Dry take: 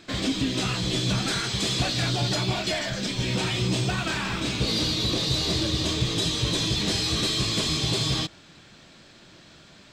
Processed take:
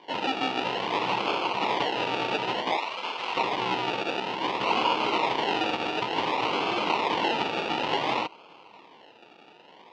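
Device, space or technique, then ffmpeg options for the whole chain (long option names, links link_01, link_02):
circuit-bent sampling toy: -filter_complex "[0:a]acrusher=samples=33:mix=1:aa=0.000001:lfo=1:lforange=19.8:lforate=0.56,highpass=480,equalizer=frequency=610:width_type=q:width=4:gain=-5,equalizer=frequency=930:width_type=q:width=4:gain=8,equalizer=frequency=1600:width_type=q:width=4:gain=-8,equalizer=frequency=2800:width_type=q:width=4:gain=8,lowpass=frequency=4400:width=0.5412,lowpass=frequency=4400:width=1.3066,asettb=1/sr,asplit=3[link_01][link_02][link_03];[link_01]atrim=end=2.774[link_04];[link_02]atrim=start=2.77:end=3.37,asetpts=PTS-STARTPTS,afade=type=in:duration=0.004:curve=qsin,afade=type=out:start_time=0.596:duration=0.004:curve=qsin,highpass=frequency=940:poles=1[link_05];[link_03]atrim=start=3.366[link_06];[link_04][link_05]acrossfade=duration=0.004:curve1=hsin:curve2=qsin[link_07];[link_07][link_06]acrossfade=duration=0.004:curve1=qsin:curve2=hsin,volume=3.5dB"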